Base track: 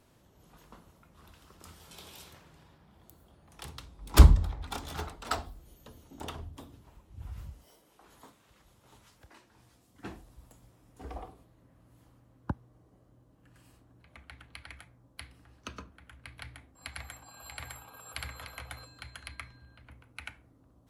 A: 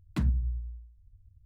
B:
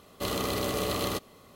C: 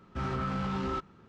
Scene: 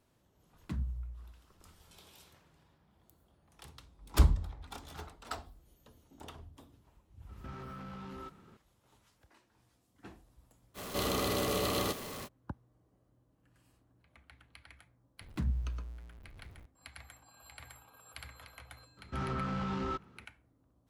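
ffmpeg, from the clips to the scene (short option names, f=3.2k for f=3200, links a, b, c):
-filter_complex "[1:a]asplit=2[a][b];[3:a]asplit=2[c][d];[0:a]volume=-8.5dB[e];[c]acompressor=threshold=-48dB:ratio=4:attack=23:release=29:knee=1:detection=peak[f];[2:a]aeval=exprs='val(0)+0.5*0.0188*sgn(val(0))':c=same[g];[b]aeval=exprs='val(0)+0.5*0.00668*sgn(val(0))':c=same[h];[d]acontrast=78[i];[a]atrim=end=1.45,asetpts=PTS-STARTPTS,volume=-9.5dB,afade=t=in:d=0.004:c=hsin,afade=t=out:st=1.446:d=0.004:c=hsin,adelay=530[j];[f]atrim=end=1.28,asetpts=PTS-STARTPTS,volume=-2dB,afade=t=in:d=0.004:c=hsin,afade=t=out:st=1.276:d=0.004:c=hsin,adelay=7290[k];[g]atrim=end=1.55,asetpts=PTS-STARTPTS,volume=-4dB,afade=t=in:d=0.05,afade=t=out:st=1.5:d=0.05,adelay=473634S[l];[h]atrim=end=1.45,asetpts=PTS-STARTPTS,volume=-6.5dB,afade=t=in:d=0.004:c=hsin,afade=t=out:st=1.446:d=0.004:c=hsin,adelay=15210[m];[i]atrim=end=1.28,asetpts=PTS-STARTPTS,volume=-10dB,afade=t=in:d=0.004:c=hsin,afade=t=out:st=1.276:d=0.004:c=hsin,adelay=18970[n];[e][j][k][l][m][n]amix=inputs=6:normalize=0"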